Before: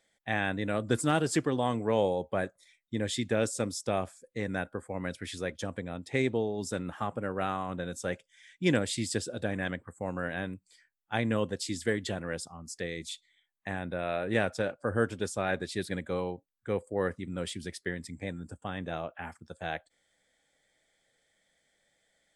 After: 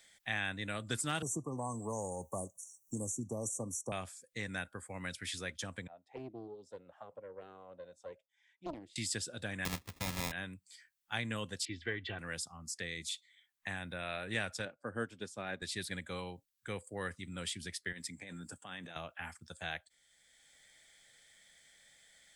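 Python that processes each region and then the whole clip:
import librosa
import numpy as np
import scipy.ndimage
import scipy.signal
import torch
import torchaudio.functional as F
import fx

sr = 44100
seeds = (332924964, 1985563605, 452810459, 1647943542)

y = fx.chain(x, sr, fx.brickwall_bandstop(low_hz=1200.0, high_hz=5600.0),
    fx.band_squash(depth_pct=70), at=(1.22, 3.92))
y = fx.chain(y, sr, fx.low_shelf(hz=220.0, db=4.5),
    fx.auto_wah(base_hz=330.0, top_hz=1000.0, q=7.0, full_db=-23.5, direction='down'),
    fx.doppler_dist(depth_ms=0.77), at=(5.87, 8.96))
y = fx.chain(y, sr, fx.halfwave_hold(),
    fx.sample_hold(seeds[0], rate_hz=1500.0, jitter_pct=0), at=(9.65, 10.32))
y = fx.chain(y, sr, fx.lowpass(hz=3000.0, slope=24),
    fx.comb(ms=2.6, depth=0.49), at=(11.65, 12.19))
y = fx.chain(y, sr, fx.highpass(hz=250.0, slope=12),
    fx.tilt_eq(slope=-3.5),
    fx.upward_expand(threshold_db=-35.0, expansion=1.5), at=(14.65, 15.62))
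y = fx.chain(y, sr, fx.highpass(hz=180.0, slope=12),
    fx.over_compress(threshold_db=-42.0, ratio=-1.0), at=(17.92, 18.96))
y = fx.tone_stack(y, sr, knobs='5-5-5')
y = fx.band_squash(y, sr, depth_pct=40)
y = y * 10.0 ** (7.5 / 20.0)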